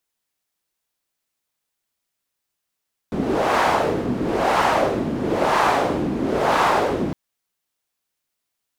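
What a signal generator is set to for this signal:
wind from filtered noise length 4.01 s, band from 250 Hz, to 960 Hz, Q 1.7, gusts 4, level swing 6.5 dB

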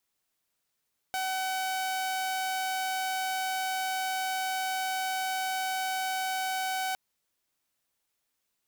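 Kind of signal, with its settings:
tone saw 756 Hz −26.5 dBFS 5.81 s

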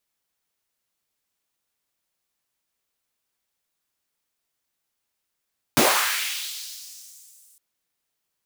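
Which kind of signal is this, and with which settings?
filter sweep on noise pink, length 1.81 s highpass, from 110 Hz, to 8,700 Hz, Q 1.7, linear, gain ramp −36 dB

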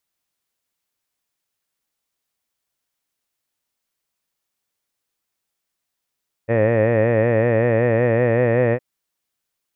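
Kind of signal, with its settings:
vowel by formant synthesis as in head, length 2.31 s, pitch 111 Hz, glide +1.5 semitones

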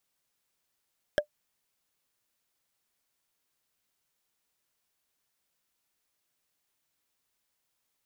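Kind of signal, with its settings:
struck wood, lowest mode 595 Hz, decay 0.09 s, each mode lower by 4 dB, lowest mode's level −16 dB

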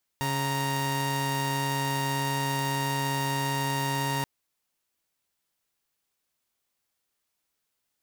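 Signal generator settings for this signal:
held notes C#3/A#5 saw, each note −26.5 dBFS 4.03 s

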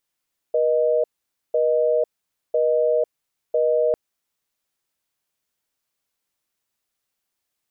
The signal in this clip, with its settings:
call progress tone busy tone, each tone −19 dBFS 3.40 s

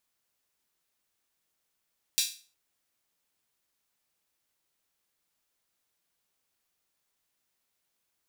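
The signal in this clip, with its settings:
open synth hi-hat length 0.36 s, high-pass 3,700 Hz, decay 0.37 s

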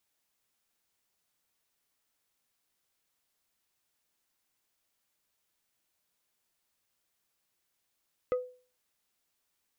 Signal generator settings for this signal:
struck wood plate, lowest mode 501 Hz, decay 0.40 s, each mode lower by 10 dB, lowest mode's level −23 dB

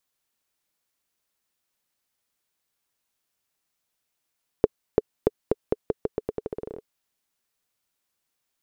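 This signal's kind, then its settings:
bouncing ball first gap 0.34 s, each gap 0.85, 434 Hz, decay 30 ms −3.5 dBFS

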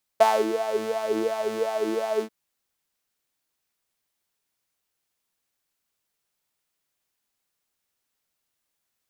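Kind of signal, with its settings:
subtractive patch with filter wobble A3, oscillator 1 saw, interval −12 semitones, filter highpass, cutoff 420 Hz, Q 11, filter envelope 0.5 octaves, attack 8.7 ms, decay 0.25 s, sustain −11 dB, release 0.08 s, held 2.01 s, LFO 2.8 Hz, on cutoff 0.6 octaves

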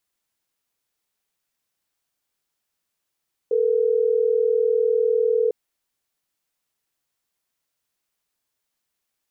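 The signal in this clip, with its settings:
call progress tone ringback tone, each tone −19.5 dBFS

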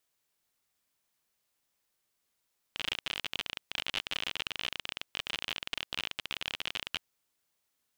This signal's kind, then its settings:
Geiger counter clicks 43 per second −17 dBFS 4.22 s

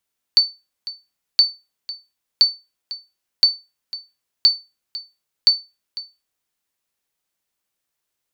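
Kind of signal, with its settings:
ping with an echo 4,520 Hz, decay 0.25 s, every 1.02 s, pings 6, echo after 0.50 s, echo −17 dB −4.5 dBFS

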